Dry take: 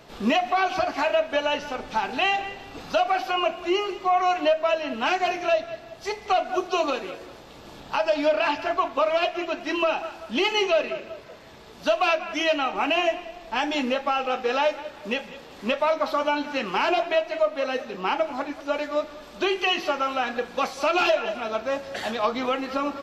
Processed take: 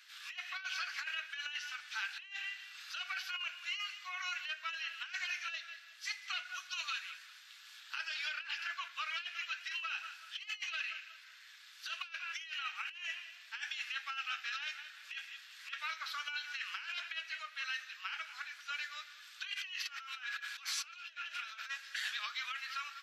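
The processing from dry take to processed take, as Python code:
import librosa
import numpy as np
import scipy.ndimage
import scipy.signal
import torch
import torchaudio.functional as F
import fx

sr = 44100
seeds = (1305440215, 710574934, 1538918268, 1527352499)

y = fx.over_compress(x, sr, threshold_db=-35.0, ratio=-1.0, at=(19.53, 21.69), fade=0.02)
y = scipy.signal.sosfilt(scipy.signal.cheby1(4, 1.0, 1500.0, 'highpass', fs=sr, output='sos'), y)
y = fx.over_compress(y, sr, threshold_db=-33.0, ratio=-0.5)
y = y * 10.0 ** (-6.0 / 20.0)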